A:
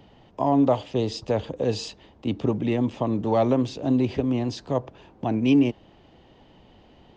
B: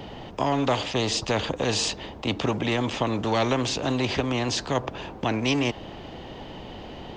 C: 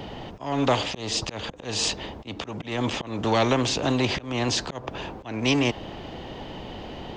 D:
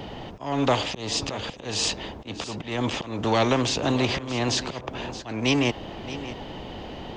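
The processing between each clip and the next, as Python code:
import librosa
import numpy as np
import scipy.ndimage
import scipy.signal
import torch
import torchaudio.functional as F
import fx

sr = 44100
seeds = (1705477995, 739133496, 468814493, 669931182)

y1 = fx.spectral_comp(x, sr, ratio=2.0)
y2 = fx.auto_swell(y1, sr, attack_ms=251.0)
y2 = y2 * 10.0 ** (2.0 / 20.0)
y3 = y2 + 10.0 ** (-14.0 / 20.0) * np.pad(y2, (int(624 * sr / 1000.0), 0))[:len(y2)]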